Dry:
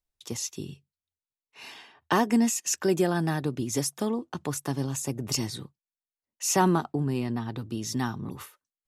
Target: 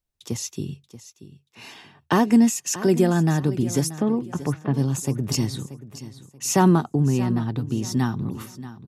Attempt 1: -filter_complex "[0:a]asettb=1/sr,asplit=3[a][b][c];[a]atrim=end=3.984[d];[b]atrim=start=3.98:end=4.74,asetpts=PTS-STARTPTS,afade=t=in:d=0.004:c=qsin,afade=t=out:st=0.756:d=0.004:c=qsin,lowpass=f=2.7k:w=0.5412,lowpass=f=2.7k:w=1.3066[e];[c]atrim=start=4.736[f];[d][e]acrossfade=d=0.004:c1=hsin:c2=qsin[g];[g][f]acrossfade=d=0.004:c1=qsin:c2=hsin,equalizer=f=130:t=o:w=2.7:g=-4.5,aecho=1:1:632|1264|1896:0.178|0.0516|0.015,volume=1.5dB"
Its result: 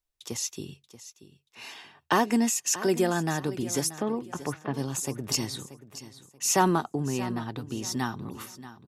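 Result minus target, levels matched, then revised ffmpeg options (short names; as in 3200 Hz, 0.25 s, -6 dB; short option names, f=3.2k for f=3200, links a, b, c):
125 Hz band -5.5 dB
-filter_complex "[0:a]asettb=1/sr,asplit=3[a][b][c];[a]atrim=end=3.984[d];[b]atrim=start=3.98:end=4.74,asetpts=PTS-STARTPTS,afade=t=in:d=0.004:c=qsin,afade=t=out:st=0.756:d=0.004:c=qsin,lowpass=f=2.7k:w=0.5412,lowpass=f=2.7k:w=1.3066[e];[c]atrim=start=4.736[f];[d][e]acrossfade=d=0.004:c1=hsin:c2=qsin[g];[g][f]acrossfade=d=0.004:c1=qsin:c2=hsin,equalizer=f=130:t=o:w=2.7:g=7.5,aecho=1:1:632|1264|1896:0.178|0.0516|0.015,volume=1.5dB"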